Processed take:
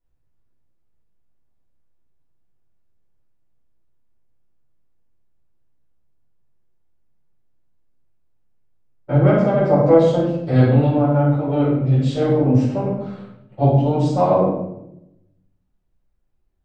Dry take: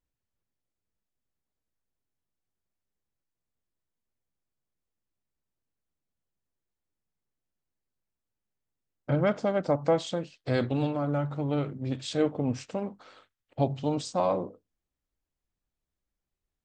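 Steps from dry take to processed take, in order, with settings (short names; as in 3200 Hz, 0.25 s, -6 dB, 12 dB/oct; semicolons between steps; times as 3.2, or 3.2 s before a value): high shelf 2100 Hz -12 dB; reverb RT60 0.85 s, pre-delay 6 ms, DRR -9.5 dB; gain -1 dB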